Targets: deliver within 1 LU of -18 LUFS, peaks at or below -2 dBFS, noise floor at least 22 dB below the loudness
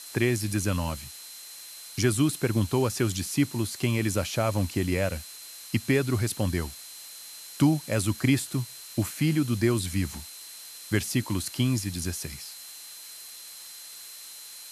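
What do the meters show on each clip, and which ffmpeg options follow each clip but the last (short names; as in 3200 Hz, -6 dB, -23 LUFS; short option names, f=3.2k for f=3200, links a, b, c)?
steady tone 4100 Hz; tone level -48 dBFS; noise floor -44 dBFS; noise floor target -50 dBFS; loudness -27.5 LUFS; peak -9.5 dBFS; loudness target -18.0 LUFS
-> -af "bandreject=f=4.1k:w=30"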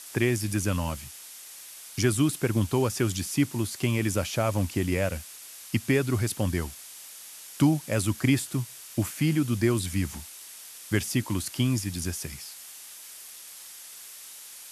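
steady tone none; noise floor -45 dBFS; noise floor target -50 dBFS
-> -af "afftdn=nr=6:nf=-45"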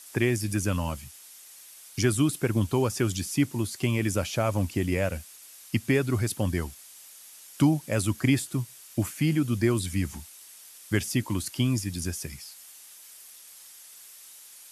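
noise floor -49 dBFS; noise floor target -50 dBFS
-> -af "afftdn=nr=6:nf=-49"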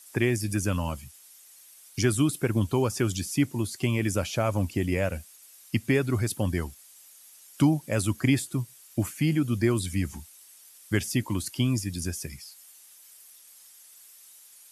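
noise floor -53 dBFS; loudness -27.5 LUFS; peak -9.5 dBFS; loudness target -18.0 LUFS
-> -af "volume=9.5dB,alimiter=limit=-2dB:level=0:latency=1"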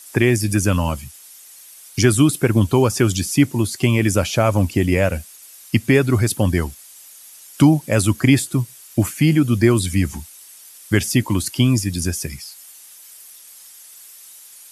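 loudness -18.0 LUFS; peak -2.0 dBFS; noise floor -43 dBFS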